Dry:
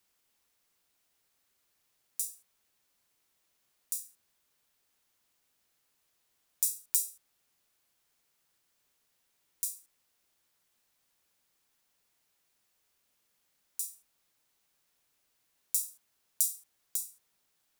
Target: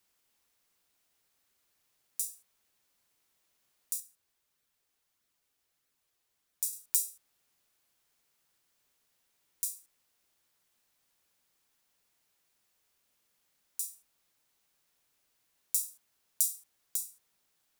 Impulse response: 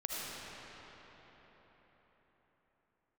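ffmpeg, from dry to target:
-filter_complex "[0:a]asettb=1/sr,asplit=3[a][b][c];[a]atrim=end=4.004[d];[b]atrim=start=4:end=6.73,asetpts=PTS-STARTPTS,afade=t=in:d=0.004:c=qsin,afade=t=out:st=2.726:d=0.004:c=qsin,flanger=delay=0.5:depth=2.2:regen=-45:speed=1.6:shape=sinusoidal[e];[c]atrim=start=6.726[f];[d][e]acrossfade=d=0.004:c1=hsin:c2=qsin[g];[g][f]acrossfade=d=0.004:c1=qsin:c2=hsin"

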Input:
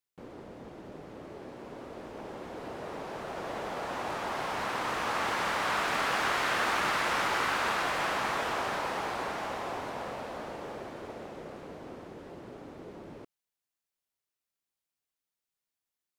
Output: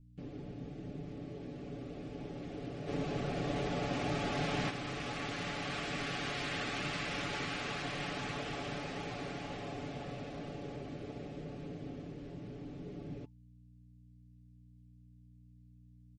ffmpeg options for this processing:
-filter_complex "[0:a]aeval=exprs='val(0)+0.000891*(sin(2*PI*60*n/s)+sin(2*PI*2*60*n/s)/2+sin(2*PI*3*60*n/s)/3+sin(2*PI*4*60*n/s)/4+sin(2*PI*5*60*n/s)/5)':c=same,asuperstop=centerf=950:order=20:qfactor=6.3,highshelf=f=9k:g=-11.5,aecho=1:1:7:0.6,asplit=2[a][b];[b]acompressor=threshold=-39dB:ratio=8,volume=-3dB[c];[a][c]amix=inputs=2:normalize=0,asettb=1/sr,asplit=3[d][e][f];[d]atrim=end=12.104[g];[e]atrim=start=12.1:end=12.86,asetpts=PTS-STARTPTS,afade=t=in:d=0.004:c=qsin,afade=t=out:st=0.756:d=0.004:c=qsin,asoftclip=type=hard:threshold=-37dB[h];[f]atrim=start=12.856[i];[g][h]acrossfade=d=0.004:c1=hsin:c2=qsin[j];[j][i]acrossfade=d=0.004:c1=qsin:c2=hsin,firequalizer=gain_entry='entry(160,0);entry(490,-11);entry(1300,-18);entry(2400,-8)':delay=0.05:min_phase=1,asplit=3[k][l][m];[k]afade=t=out:st=2.87:d=0.02[n];[l]acontrast=65,afade=t=in:st=2.87:d=0.02,afade=t=out:st=4.69:d=0.02[o];[m]afade=t=in:st=4.69:d=0.02[p];[n][o][p]amix=inputs=3:normalize=0,volume=1dB" -ar 48000 -c:a libmp3lame -b:a 40k

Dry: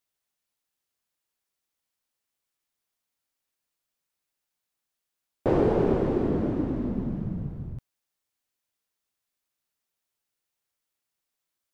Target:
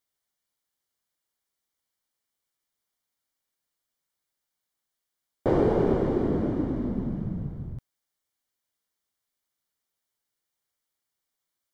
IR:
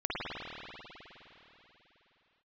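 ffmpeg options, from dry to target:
-af "asuperstop=centerf=2600:order=4:qfactor=7.5"

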